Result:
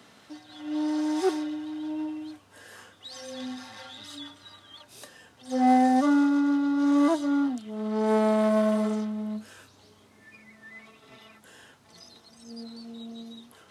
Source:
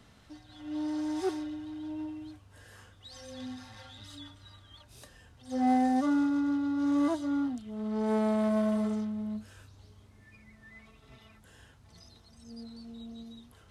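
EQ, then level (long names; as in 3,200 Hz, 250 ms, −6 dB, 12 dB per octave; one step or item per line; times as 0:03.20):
high-pass filter 240 Hz 12 dB per octave
+7.0 dB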